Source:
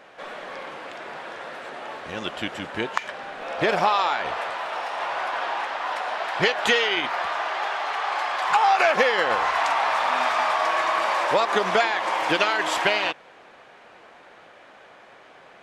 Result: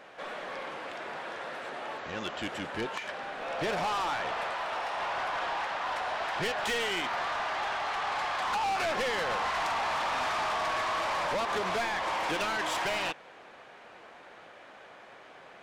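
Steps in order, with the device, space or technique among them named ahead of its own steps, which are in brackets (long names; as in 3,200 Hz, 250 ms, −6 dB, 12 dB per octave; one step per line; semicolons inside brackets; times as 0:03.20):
0:01.98–0:02.45: Chebyshev low-pass filter 7,600 Hz, order 8
saturation between pre-emphasis and de-emphasis (high-shelf EQ 10,000 Hz +6.5 dB; soft clipping −25.5 dBFS, distortion −7 dB; high-shelf EQ 10,000 Hz −6.5 dB)
level −2 dB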